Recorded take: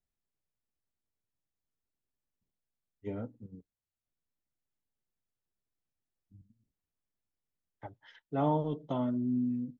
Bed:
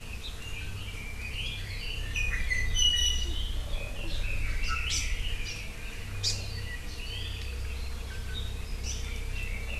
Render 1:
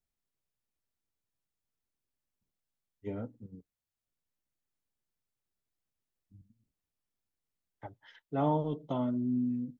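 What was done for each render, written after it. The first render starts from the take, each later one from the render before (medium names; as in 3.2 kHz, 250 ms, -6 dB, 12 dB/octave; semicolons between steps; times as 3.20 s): 8.53–9.22 s: band-stop 1.7 kHz, Q 6.3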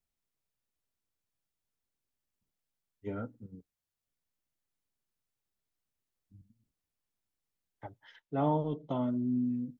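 3.07–3.52 s: peaking EQ 1.4 kHz +13 dB -> +5 dB 0.33 oct; 8.20–9.04 s: distance through air 67 m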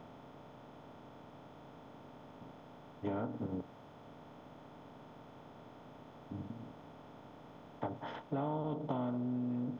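spectral levelling over time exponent 0.4; compression 5:1, threshold -34 dBFS, peak gain reduction 10.5 dB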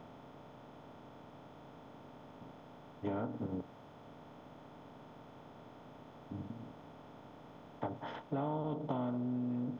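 no audible change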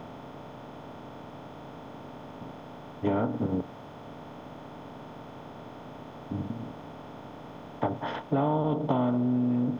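trim +10.5 dB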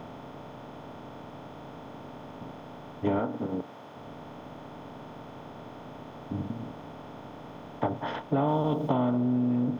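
3.19–3.96 s: high-pass 270 Hz 6 dB/octave; 8.48–8.89 s: treble shelf 4 kHz +12 dB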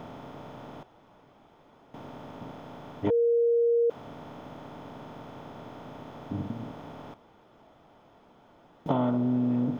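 0.83–1.94 s: room tone; 3.10–3.90 s: bleep 469 Hz -20 dBFS; 7.14–8.86 s: room tone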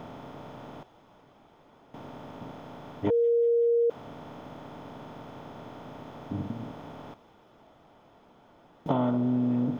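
feedback echo behind a high-pass 190 ms, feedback 73%, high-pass 3.1 kHz, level -14.5 dB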